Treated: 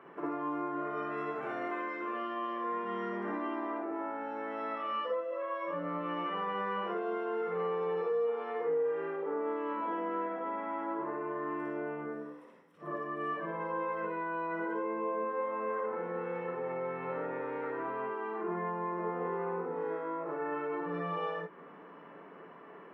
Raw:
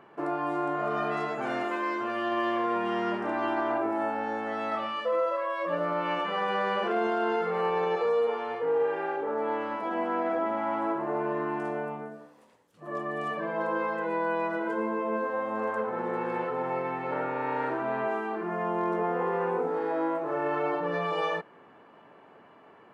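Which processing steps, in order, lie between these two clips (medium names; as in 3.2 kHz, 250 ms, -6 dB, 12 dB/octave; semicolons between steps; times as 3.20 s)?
compression, threshold -37 dBFS, peak gain reduction 13 dB; reverberation RT60 0.15 s, pre-delay 47 ms, DRR -0.5 dB; trim -8.5 dB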